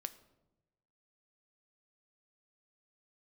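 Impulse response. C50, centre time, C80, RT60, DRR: 16.0 dB, 5 ms, 18.0 dB, 1.0 s, 10.5 dB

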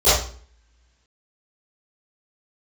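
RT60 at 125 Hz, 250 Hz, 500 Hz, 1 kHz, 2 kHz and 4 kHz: 0.55, 0.60, 0.45, 0.45, 0.45, 0.40 s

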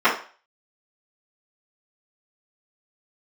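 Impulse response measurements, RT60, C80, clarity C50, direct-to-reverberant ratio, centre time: 0.40 s, 13.5 dB, 7.5 dB, -14.0 dB, 24 ms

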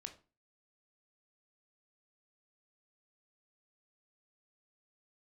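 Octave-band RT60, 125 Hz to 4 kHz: 0.40, 0.40, 0.35, 0.35, 0.30, 0.25 s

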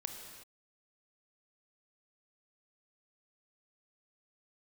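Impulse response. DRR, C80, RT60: 3.5 dB, 5.5 dB, not exponential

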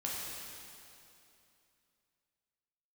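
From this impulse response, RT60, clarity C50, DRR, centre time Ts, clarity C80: 2.8 s, -2.0 dB, -5.5 dB, 0.155 s, 0.0 dB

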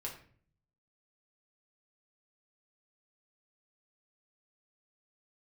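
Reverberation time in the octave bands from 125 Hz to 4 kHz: 1.0, 0.75, 0.55, 0.45, 0.45, 0.35 s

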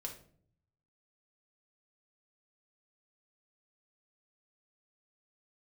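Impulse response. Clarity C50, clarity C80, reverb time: 8.5 dB, 13.5 dB, 0.55 s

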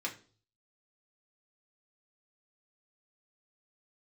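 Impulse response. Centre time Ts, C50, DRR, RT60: 13 ms, 13.0 dB, -2.0 dB, 0.40 s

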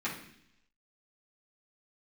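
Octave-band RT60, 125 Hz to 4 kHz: 0.85, 0.85, 0.75, 0.65, 0.85, 0.95 s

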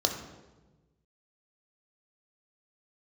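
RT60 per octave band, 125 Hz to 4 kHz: 1.8, 1.5, 1.3, 1.1, 0.90, 0.85 s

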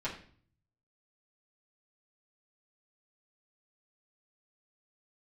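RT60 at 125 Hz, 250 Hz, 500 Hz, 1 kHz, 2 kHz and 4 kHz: 1.0, 0.65, 0.50, 0.45, 0.45, 0.45 s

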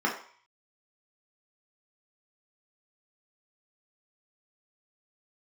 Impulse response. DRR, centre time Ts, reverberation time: -2.5 dB, 24 ms, 0.50 s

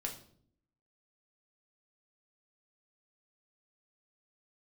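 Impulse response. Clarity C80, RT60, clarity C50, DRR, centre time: 13.5 dB, 0.60 s, 9.5 dB, 0.5 dB, 18 ms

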